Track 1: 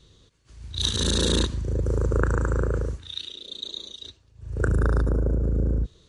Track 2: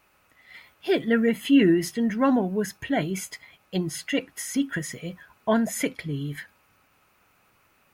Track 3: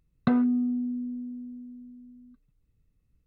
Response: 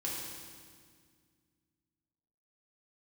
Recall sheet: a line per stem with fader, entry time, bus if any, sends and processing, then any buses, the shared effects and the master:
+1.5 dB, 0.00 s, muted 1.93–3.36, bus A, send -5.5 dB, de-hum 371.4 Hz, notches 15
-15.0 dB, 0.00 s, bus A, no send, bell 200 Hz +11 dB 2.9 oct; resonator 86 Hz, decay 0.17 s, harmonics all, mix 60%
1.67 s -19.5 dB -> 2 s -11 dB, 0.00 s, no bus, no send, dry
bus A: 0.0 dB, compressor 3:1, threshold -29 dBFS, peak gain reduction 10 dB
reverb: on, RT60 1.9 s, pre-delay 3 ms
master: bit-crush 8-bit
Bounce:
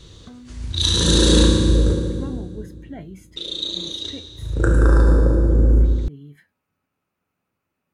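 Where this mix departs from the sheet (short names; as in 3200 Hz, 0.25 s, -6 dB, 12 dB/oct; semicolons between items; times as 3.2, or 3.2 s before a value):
stem 1 +1.5 dB -> +8.5 dB; master: missing bit-crush 8-bit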